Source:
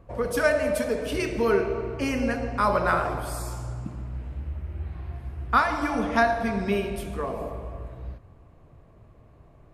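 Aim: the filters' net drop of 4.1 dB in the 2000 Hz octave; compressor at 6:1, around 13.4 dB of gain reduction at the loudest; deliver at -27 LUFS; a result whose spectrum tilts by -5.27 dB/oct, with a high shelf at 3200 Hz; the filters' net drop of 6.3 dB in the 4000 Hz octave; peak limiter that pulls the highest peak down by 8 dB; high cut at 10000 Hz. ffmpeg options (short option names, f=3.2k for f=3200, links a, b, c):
-af "lowpass=10k,equalizer=f=2k:t=o:g=-4,highshelf=f=3.2k:g=-4,equalizer=f=4k:t=o:g=-4,acompressor=threshold=-32dB:ratio=6,volume=11.5dB,alimiter=limit=-17.5dB:level=0:latency=1"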